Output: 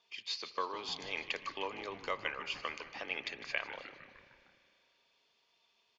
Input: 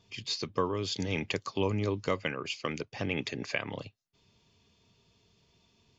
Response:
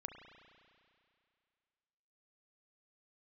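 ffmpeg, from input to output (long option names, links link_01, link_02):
-filter_complex "[0:a]highpass=740,lowpass=4600,asplit=7[link_01][link_02][link_03][link_04][link_05][link_06][link_07];[link_02]adelay=153,afreqshift=-140,volume=-13dB[link_08];[link_03]adelay=306,afreqshift=-280,volume=-17.6dB[link_09];[link_04]adelay=459,afreqshift=-420,volume=-22.2dB[link_10];[link_05]adelay=612,afreqshift=-560,volume=-26.7dB[link_11];[link_06]adelay=765,afreqshift=-700,volume=-31.3dB[link_12];[link_07]adelay=918,afreqshift=-840,volume=-35.9dB[link_13];[link_01][link_08][link_09][link_10][link_11][link_12][link_13]amix=inputs=7:normalize=0,asplit=2[link_14][link_15];[1:a]atrim=start_sample=2205,asetrate=38808,aresample=44100[link_16];[link_15][link_16]afir=irnorm=-1:irlink=0,volume=-3.5dB[link_17];[link_14][link_17]amix=inputs=2:normalize=0,volume=-5dB"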